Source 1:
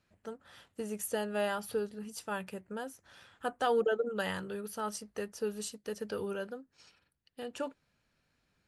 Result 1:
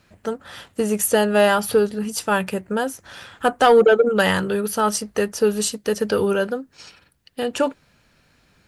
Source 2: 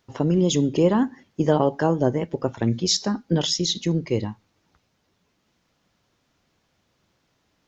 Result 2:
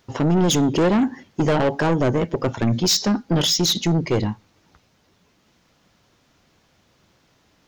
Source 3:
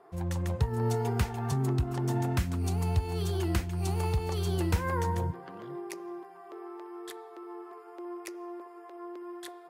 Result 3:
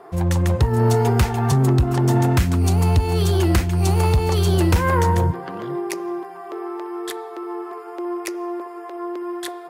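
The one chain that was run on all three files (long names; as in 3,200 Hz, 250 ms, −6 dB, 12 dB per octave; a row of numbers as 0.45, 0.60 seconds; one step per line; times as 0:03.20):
soft clipping −22.5 dBFS
loudness normalisation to −20 LKFS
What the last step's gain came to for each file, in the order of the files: +17.5, +8.5, +13.5 decibels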